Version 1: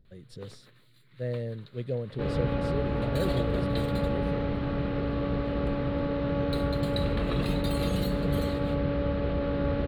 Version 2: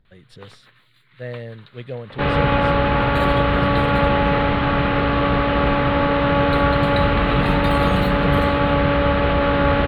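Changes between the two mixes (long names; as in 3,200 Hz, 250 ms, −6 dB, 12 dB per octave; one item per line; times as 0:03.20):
first sound: send off
second sound +9.0 dB
master: add flat-topped bell 1,600 Hz +10.5 dB 2.6 octaves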